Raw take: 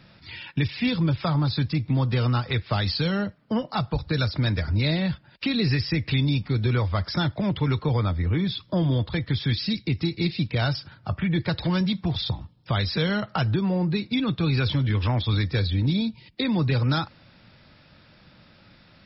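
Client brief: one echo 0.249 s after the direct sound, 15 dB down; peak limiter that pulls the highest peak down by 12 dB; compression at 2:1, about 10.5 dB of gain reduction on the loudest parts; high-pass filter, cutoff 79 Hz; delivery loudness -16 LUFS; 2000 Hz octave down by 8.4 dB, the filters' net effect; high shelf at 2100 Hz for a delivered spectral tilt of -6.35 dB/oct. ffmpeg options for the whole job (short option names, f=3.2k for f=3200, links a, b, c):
-af "highpass=79,equalizer=f=2k:t=o:g=-7.5,highshelf=f=2.1k:g=-6.5,acompressor=threshold=-40dB:ratio=2,alimiter=level_in=10dB:limit=-24dB:level=0:latency=1,volume=-10dB,aecho=1:1:249:0.178,volume=26dB"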